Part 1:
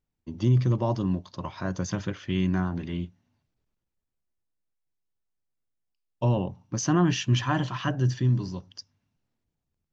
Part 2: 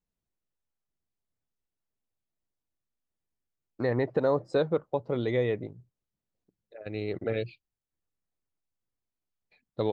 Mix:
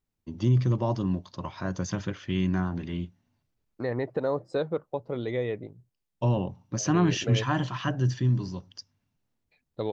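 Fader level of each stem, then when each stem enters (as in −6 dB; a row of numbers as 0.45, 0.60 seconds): −1.0, −2.5 decibels; 0.00, 0.00 seconds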